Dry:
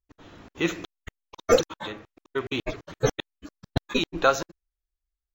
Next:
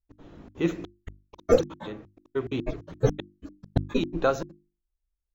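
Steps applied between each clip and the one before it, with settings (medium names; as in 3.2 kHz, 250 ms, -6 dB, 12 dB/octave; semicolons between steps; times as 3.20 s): tilt shelf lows +7.5 dB, about 700 Hz; hum notches 50/100/150/200/250/300/350 Hz; trim -3 dB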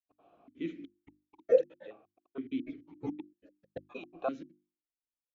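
stepped vowel filter 2.1 Hz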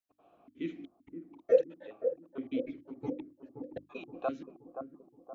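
bucket-brigade echo 523 ms, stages 4096, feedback 50%, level -8 dB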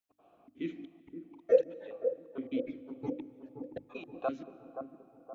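algorithmic reverb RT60 3.5 s, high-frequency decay 0.6×, pre-delay 105 ms, DRR 18 dB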